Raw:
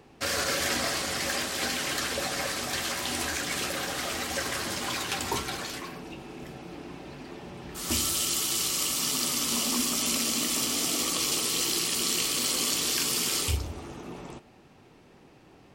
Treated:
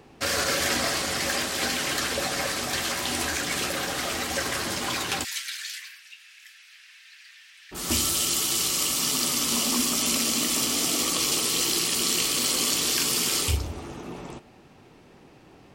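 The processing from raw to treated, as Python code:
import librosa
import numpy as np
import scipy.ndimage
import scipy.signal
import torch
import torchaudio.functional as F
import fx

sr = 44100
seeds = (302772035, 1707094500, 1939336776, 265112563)

y = fx.ellip_highpass(x, sr, hz=1700.0, order=4, stop_db=80, at=(5.23, 7.71), fade=0.02)
y = y * librosa.db_to_amplitude(3.0)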